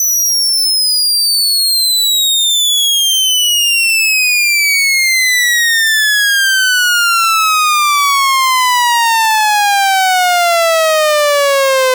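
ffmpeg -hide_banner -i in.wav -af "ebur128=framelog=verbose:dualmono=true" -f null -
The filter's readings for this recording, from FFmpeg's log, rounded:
Integrated loudness:
  I:          -6.0 LUFS
  Threshold: -16.0 LUFS
Loudness range:
  LRA:         1.5 LU
  Threshold: -25.9 LUFS
  LRA low:    -6.9 LUFS
  LRA high:   -5.4 LUFS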